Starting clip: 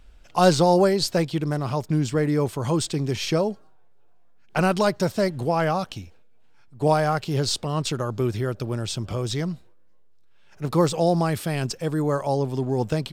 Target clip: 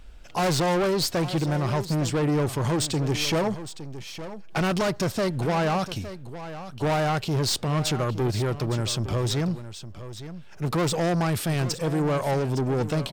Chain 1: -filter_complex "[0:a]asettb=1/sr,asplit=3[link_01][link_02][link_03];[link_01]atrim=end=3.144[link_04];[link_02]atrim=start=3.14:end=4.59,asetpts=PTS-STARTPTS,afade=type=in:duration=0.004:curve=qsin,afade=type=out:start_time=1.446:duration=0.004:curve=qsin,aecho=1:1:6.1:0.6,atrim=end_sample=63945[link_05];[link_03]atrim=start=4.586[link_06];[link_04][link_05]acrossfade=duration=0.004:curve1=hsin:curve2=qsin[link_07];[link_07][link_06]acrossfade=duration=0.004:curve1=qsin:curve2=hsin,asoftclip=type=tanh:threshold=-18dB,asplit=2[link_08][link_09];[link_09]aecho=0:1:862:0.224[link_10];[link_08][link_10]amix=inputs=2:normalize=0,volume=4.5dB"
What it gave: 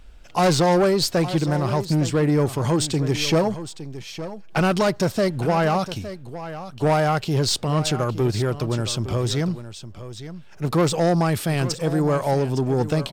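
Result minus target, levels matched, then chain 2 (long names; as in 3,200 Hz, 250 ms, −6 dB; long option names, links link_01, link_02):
soft clipping: distortion −6 dB
-filter_complex "[0:a]asettb=1/sr,asplit=3[link_01][link_02][link_03];[link_01]atrim=end=3.144[link_04];[link_02]atrim=start=3.14:end=4.59,asetpts=PTS-STARTPTS,afade=type=in:duration=0.004:curve=qsin,afade=type=out:start_time=1.446:duration=0.004:curve=qsin,aecho=1:1:6.1:0.6,atrim=end_sample=63945[link_05];[link_03]atrim=start=4.586[link_06];[link_04][link_05]acrossfade=duration=0.004:curve1=hsin:curve2=qsin[link_07];[link_07][link_06]acrossfade=duration=0.004:curve1=qsin:curve2=hsin,asoftclip=type=tanh:threshold=-25.5dB,asplit=2[link_08][link_09];[link_09]aecho=0:1:862:0.224[link_10];[link_08][link_10]amix=inputs=2:normalize=0,volume=4.5dB"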